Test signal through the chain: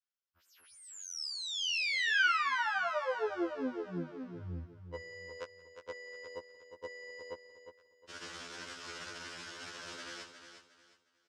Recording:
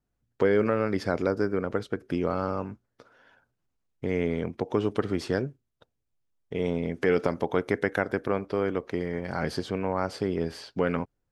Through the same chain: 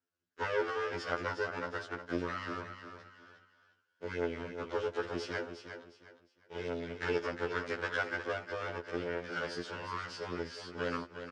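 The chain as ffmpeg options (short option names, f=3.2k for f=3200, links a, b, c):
-filter_complex "[0:a]acrossover=split=2900[a][b];[b]acompressor=threshold=-39dB:ratio=6[c];[a][c]amix=inputs=2:normalize=0,asplit=2[d][e];[e]adelay=174.9,volume=-25dB,highshelf=f=4k:g=-3.94[f];[d][f]amix=inputs=2:normalize=0,aeval=exprs='max(val(0),0)':c=same,highpass=160,equalizer=f=160:t=q:w=4:g=-9,equalizer=f=230:t=q:w=4:g=-6,equalizer=f=750:t=q:w=4:g=-7,equalizer=f=1.5k:t=q:w=4:g=9,equalizer=f=3k:t=q:w=4:g=4,equalizer=f=5.2k:t=q:w=4:g=6,lowpass=f=7.3k:w=0.5412,lowpass=f=7.3k:w=1.3066,asplit=2[g][h];[h]aecho=0:1:358|716|1074:0.355|0.103|0.0298[i];[g][i]amix=inputs=2:normalize=0,afftfilt=real='re*2*eq(mod(b,4),0)':imag='im*2*eq(mod(b,4),0)':win_size=2048:overlap=0.75"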